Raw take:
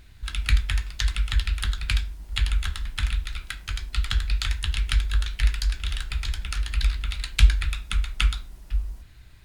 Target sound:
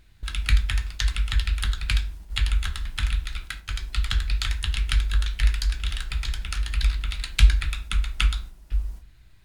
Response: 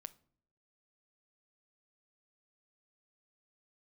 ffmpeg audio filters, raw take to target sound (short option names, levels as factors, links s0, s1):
-filter_complex "[0:a]agate=range=0.501:threshold=0.0141:ratio=16:detection=peak[s0];[1:a]atrim=start_sample=2205,asetrate=48510,aresample=44100[s1];[s0][s1]afir=irnorm=-1:irlink=0,volume=2.24"